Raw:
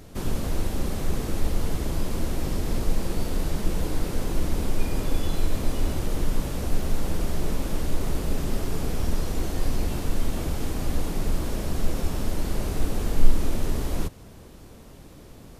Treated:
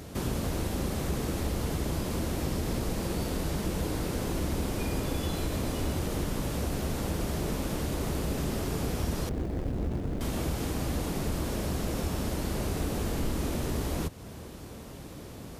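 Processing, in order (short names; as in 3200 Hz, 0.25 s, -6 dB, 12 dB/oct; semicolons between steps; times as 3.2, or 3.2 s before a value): 9.29–10.21 median filter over 41 samples; HPF 53 Hz; compressor 1.5:1, threshold -39 dBFS, peak gain reduction 5.5 dB; gain +4 dB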